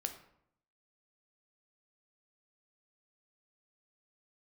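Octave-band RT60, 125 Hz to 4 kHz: 0.85 s, 0.80 s, 0.70 s, 0.70 s, 0.60 s, 0.45 s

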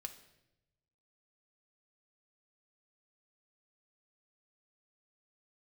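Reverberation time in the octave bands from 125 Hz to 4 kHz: 1.5 s, 1.1 s, 1.1 s, 0.75 s, 0.80 s, 0.75 s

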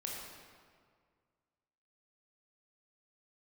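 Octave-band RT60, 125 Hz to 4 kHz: 2.2 s, 2.0 s, 2.0 s, 1.9 s, 1.6 s, 1.3 s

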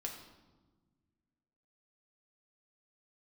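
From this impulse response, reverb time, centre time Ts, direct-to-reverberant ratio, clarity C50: 1.3 s, 30 ms, 0.5 dB, 6.0 dB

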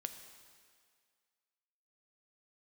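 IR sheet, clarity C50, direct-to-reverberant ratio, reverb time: 8.5 dB, 7.0 dB, 2.0 s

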